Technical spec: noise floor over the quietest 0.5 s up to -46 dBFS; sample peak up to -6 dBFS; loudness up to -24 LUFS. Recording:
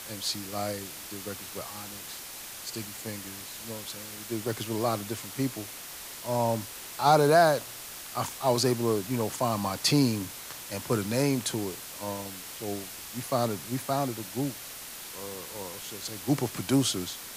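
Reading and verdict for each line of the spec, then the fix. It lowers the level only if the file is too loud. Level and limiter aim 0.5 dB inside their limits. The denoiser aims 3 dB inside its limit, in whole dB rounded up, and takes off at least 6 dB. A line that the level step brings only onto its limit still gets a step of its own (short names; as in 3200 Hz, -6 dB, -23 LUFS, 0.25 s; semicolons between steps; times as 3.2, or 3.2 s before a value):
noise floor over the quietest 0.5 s -42 dBFS: fail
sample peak -9.0 dBFS: OK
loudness -30.0 LUFS: OK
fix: denoiser 7 dB, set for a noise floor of -42 dBFS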